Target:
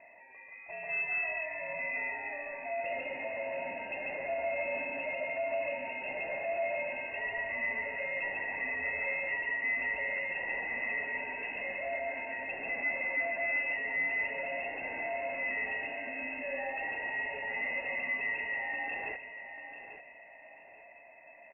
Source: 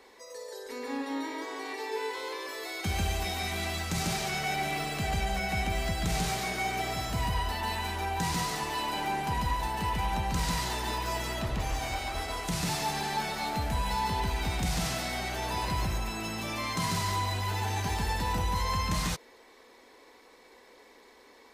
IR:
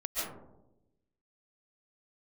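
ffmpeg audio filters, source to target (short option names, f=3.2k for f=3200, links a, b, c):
-filter_complex "[0:a]highpass=f=100:p=1,tiltshelf=f=1.3k:g=-7,asoftclip=type=tanh:threshold=-29dB,asplit=3[a][b][c];[a]bandpass=f=300:t=q:w=8,volume=0dB[d];[b]bandpass=f=870:t=q:w=8,volume=-6dB[e];[c]bandpass=f=2.24k:t=q:w=8,volume=-9dB[f];[d][e][f]amix=inputs=3:normalize=0,aresample=16000,aeval=exprs='0.0299*sin(PI/2*2.51*val(0)/0.0299)':c=same,aresample=44100,aecho=1:1:842|1684|2526:0.299|0.0836|0.0234,lowpass=f=2.5k:t=q:w=0.5098,lowpass=f=2.5k:t=q:w=0.6013,lowpass=f=2.5k:t=q:w=0.9,lowpass=f=2.5k:t=q:w=2.563,afreqshift=-2900,volume=3dB"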